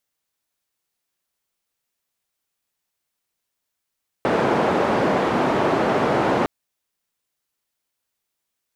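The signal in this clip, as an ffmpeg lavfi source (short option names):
-f lavfi -i "anoisesrc=c=white:d=2.21:r=44100:seed=1,highpass=f=170,lowpass=f=760,volume=0.5dB"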